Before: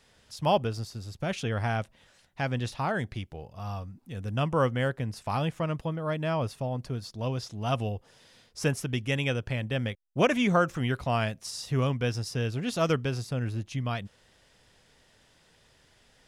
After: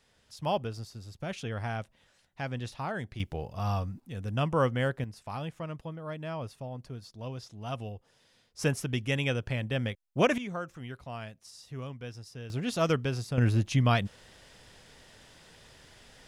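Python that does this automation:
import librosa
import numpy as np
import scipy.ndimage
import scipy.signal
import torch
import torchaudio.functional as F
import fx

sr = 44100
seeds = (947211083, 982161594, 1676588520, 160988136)

y = fx.gain(x, sr, db=fx.steps((0.0, -5.5), (3.2, 5.5), (4.0, -1.0), (5.04, -8.0), (8.59, -1.0), (10.38, -13.0), (12.5, -1.0), (13.38, 7.0)))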